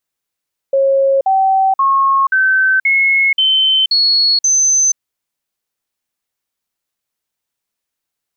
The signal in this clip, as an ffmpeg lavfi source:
ffmpeg -f lavfi -i "aevalsrc='0.355*clip(min(mod(t,0.53),0.48-mod(t,0.53))/0.005,0,1)*sin(2*PI*544*pow(2,floor(t/0.53)/2)*mod(t,0.53))':duration=4.24:sample_rate=44100" out.wav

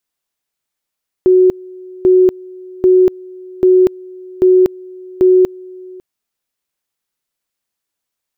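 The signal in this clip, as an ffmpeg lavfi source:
ffmpeg -f lavfi -i "aevalsrc='pow(10,(-5-24.5*gte(mod(t,0.79),0.24))/20)*sin(2*PI*369*t)':duration=4.74:sample_rate=44100" out.wav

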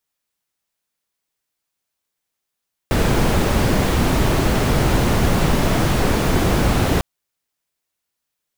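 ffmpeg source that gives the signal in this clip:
ffmpeg -f lavfi -i "anoisesrc=color=brown:amplitude=0.741:duration=4.1:sample_rate=44100:seed=1" out.wav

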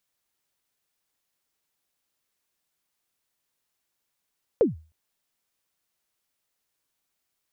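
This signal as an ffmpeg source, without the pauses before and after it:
ffmpeg -f lavfi -i "aevalsrc='0.251*pow(10,-3*t/0.34)*sin(2*PI*(530*0.147/log(79/530)*(exp(log(79/530)*min(t,0.147)/0.147)-1)+79*max(t-0.147,0)))':duration=0.31:sample_rate=44100" out.wav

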